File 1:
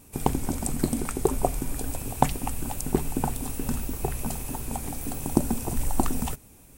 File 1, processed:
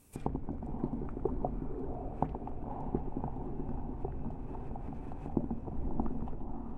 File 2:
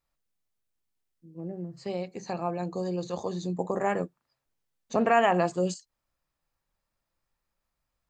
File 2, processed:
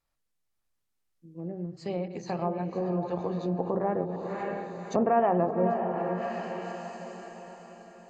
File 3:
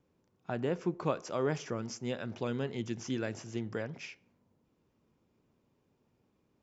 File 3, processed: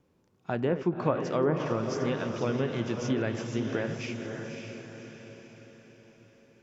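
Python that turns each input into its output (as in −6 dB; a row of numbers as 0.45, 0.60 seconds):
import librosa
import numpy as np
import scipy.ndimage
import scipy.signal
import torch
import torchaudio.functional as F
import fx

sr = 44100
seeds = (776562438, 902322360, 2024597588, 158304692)

y = fx.reverse_delay(x, sr, ms=104, wet_db=-12)
y = fx.echo_diffused(y, sr, ms=564, feedback_pct=48, wet_db=-5.5)
y = fx.env_lowpass_down(y, sr, base_hz=880.0, full_db=-24.0)
y = librosa.util.normalize(y) * 10.0 ** (-12 / 20.0)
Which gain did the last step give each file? −10.0, 0.0, +5.0 decibels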